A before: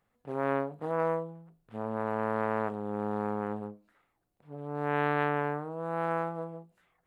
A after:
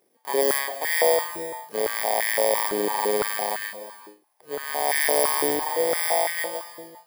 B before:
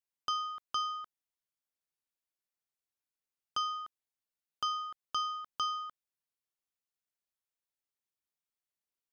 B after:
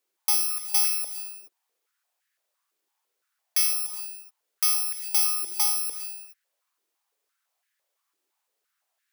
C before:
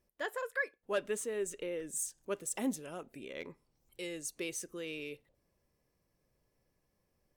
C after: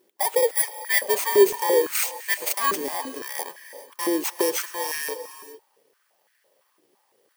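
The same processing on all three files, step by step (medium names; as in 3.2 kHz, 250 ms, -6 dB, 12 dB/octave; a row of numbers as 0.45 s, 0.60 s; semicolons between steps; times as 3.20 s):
bit-reversed sample order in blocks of 32 samples; in parallel at -2.5 dB: peak limiter -27.5 dBFS; on the sum: gated-style reverb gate 450 ms rising, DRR 12 dB; step-sequenced high-pass 5.9 Hz 360–1700 Hz; normalise loudness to -23 LUFS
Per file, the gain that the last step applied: +4.0 dB, +7.0 dB, +8.0 dB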